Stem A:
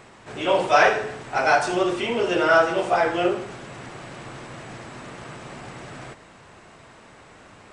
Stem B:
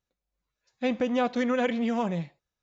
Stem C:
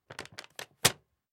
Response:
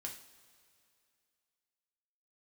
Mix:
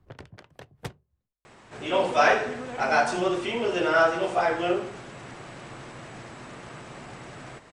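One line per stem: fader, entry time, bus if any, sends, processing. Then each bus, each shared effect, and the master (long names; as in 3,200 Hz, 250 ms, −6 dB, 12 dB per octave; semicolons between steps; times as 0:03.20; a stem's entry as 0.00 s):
−3.5 dB, 1.45 s, no send, no processing
−12.5 dB, 1.10 s, no send, no processing
−9.5 dB, 0.00 s, no send, spectral tilt −4 dB per octave; multiband upward and downward compressor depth 70%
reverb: not used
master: no processing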